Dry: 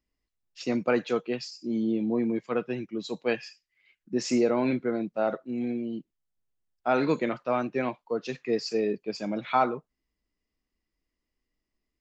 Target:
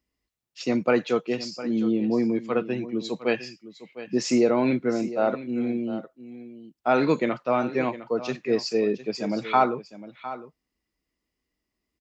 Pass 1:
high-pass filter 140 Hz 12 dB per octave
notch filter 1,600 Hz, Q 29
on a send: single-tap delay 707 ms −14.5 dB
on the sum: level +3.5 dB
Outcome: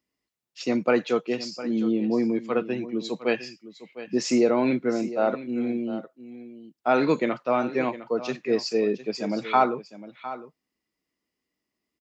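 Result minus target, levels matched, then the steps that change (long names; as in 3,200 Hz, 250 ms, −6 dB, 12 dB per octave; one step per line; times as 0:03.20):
125 Hz band −2.5 dB
change: high-pass filter 49 Hz 12 dB per octave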